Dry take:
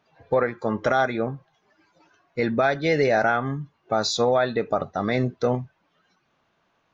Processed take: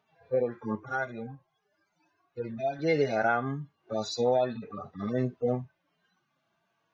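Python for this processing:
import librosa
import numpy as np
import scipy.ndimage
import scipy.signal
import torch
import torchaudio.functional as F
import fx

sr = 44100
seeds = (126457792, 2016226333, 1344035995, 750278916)

y = fx.hpss_only(x, sr, part='harmonic')
y = fx.low_shelf(y, sr, hz=110.0, db=-6.0)
y = fx.comb_cascade(y, sr, direction='rising', hz=1.4, at=(0.75, 2.79))
y = F.gain(torch.from_numpy(y), -3.5).numpy()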